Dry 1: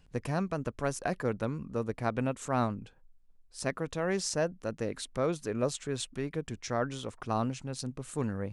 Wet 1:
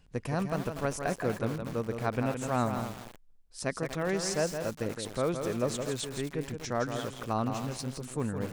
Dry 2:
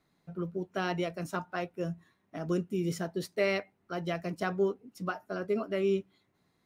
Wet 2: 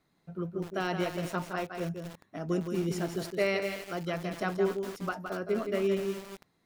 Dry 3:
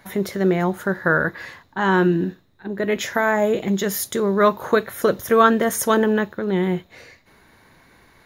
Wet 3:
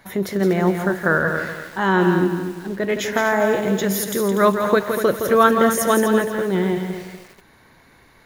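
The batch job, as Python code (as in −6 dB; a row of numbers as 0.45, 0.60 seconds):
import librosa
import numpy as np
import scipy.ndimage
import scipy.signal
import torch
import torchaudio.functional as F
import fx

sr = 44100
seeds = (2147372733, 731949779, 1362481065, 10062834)

y = x + 10.0 ** (-7.0 / 20.0) * np.pad(x, (int(166 * sr / 1000.0), 0))[:len(x)]
y = fx.echo_crushed(y, sr, ms=242, feedback_pct=35, bits=6, wet_db=-9)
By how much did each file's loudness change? +1.0, +1.0, +1.0 LU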